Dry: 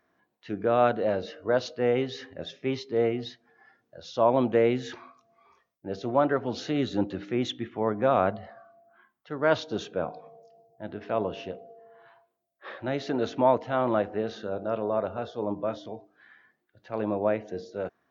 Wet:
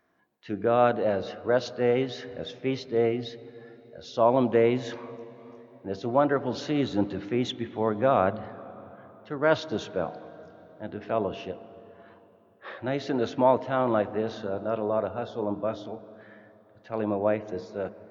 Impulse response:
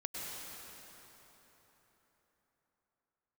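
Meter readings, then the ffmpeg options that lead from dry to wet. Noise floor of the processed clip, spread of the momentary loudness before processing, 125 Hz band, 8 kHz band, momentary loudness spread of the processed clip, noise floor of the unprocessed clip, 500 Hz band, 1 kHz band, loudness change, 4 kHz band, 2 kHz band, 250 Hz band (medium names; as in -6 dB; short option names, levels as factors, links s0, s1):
-57 dBFS, 17 LU, +1.5 dB, no reading, 19 LU, -76 dBFS, +1.0 dB, +0.5 dB, +1.0 dB, 0.0 dB, +0.5 dB, +1.0 dB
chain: -filter_complex "[0:a]asplit=2[s0][s1];[1:a]atrim=start_sample=2205,lowpass=3800,lowshelf=f=330:g=5.5[s2];[s1][s2]afir=irnorm=-1:irlink=0,volume=0.133[s3];[s0][s3]amix=inputs=2:normalize=0"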